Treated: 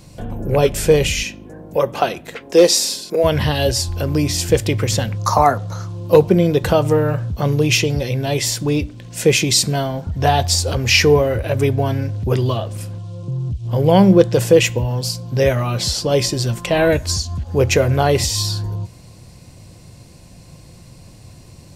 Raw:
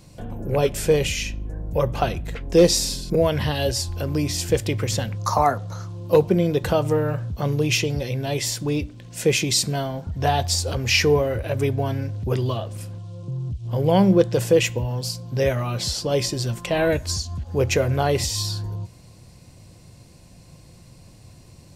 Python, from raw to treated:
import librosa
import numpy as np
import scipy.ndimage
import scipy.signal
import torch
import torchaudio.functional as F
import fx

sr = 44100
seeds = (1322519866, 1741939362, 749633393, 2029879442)

y = fx.highpass(x, sr, hz=fx.line((1.22, 180.0), (3.23, 460.0)), slope=12, at=(1.22, 3.23), fade=0.02)
y = y * librosa.db_to_amplitude(5.5)